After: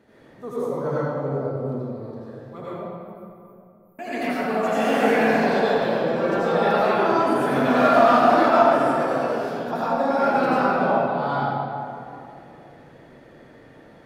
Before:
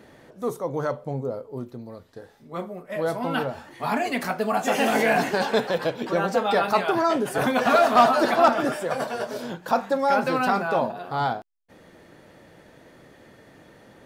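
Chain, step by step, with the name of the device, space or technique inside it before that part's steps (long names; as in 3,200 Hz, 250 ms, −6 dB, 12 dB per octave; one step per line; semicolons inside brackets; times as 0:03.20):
0:02.73–0:03.99: inverse Chebyshev band-stop filter 140–4,800 Hz, stop band 70 dB
swimming-pool hall (convolution reverb RT60 2.6 s, pre-delay 75 ms, DRR −10.5 dB; high-shelf EQ 3,900 Hz −6.5 dB)
level −8.5 dB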